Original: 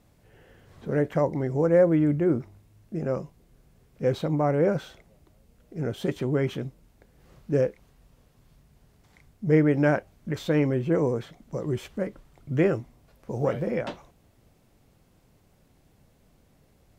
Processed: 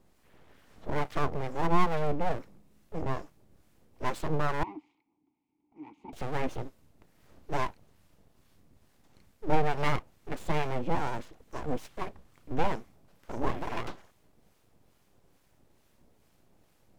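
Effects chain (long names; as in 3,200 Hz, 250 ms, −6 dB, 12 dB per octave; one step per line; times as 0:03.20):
full-wave rectification
0:04.63–0:06.13: formant filter u
two-band tremolo in antiphase 2.3 Hz, depth 50%, crossover 950 Hz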